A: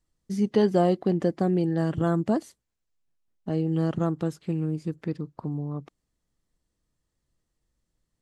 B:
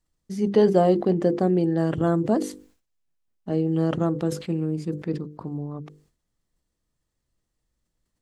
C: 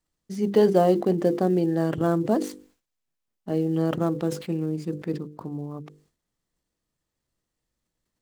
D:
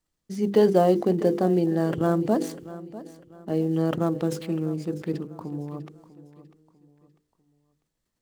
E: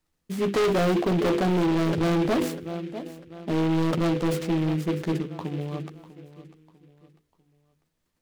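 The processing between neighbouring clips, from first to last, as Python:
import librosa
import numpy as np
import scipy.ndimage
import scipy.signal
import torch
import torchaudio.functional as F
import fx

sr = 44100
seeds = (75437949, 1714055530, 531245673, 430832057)

y1 = fx.hum_notches(x, sr, base_hz=50, count=10)
y1 = fx.dynamic_eq(y1, sr, hz=440.0, q=0.85, threshold_db=-35.0, ratio=4.0, max_db=5)
y1 = fx.sustainer(y1, sr, db_per_s=120.0)
y2 = fx.dead_time(y1, sr, dead_ms=0.05)
y2 = fx.low_shelf(y2, sr, hz=96.0, db=-9.0)
y3 = fx.echo_feedback(y2, sr, ms=647, feedback_pct=36, wet_db=-16.5)
y4 = fx.doubler(y3, sr, ms=12.0, db=-6.5)
y4 = np.clip(y4, -10.0 ** (-23.0 / 20.0), 10.0 ** (-23.0 / 20.0))
y4 = fx.noise_mod_delay(y4, sr, seeds[0], noise_hz=2200.0, depth_ms=0.048)
y4 = y4 * 10.0 ** (3.0 / 20.0)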